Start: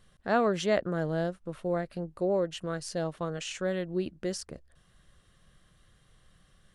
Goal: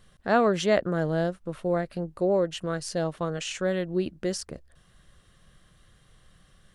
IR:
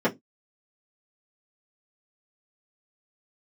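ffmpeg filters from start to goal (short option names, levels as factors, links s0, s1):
-af "volume=1.58"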